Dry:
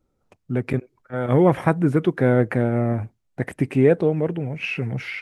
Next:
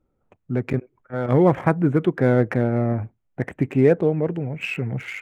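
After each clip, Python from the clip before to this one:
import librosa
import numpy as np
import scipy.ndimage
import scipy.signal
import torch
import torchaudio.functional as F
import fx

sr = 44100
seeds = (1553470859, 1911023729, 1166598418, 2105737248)

y = fx.wiener(x, sr, points=9)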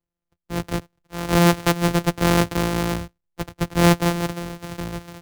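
y = np.r_[np.sort(x[:len(x) // 256 * 256].reshape(-1, 256), axis=1).ravel(), x[len(x) // 256 * 256:]]
y = fx.band_widen(y, sr, depth_pct=40)
y = y * 10.0 ** (-1.0 / 20.0)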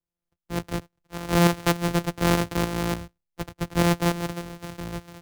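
y = fx.tremolo_shape(x, sr, shape='saw_up', hz=3.4, depth_pct=55)
y = y * 10.0 ** (-1.5 / 20.0)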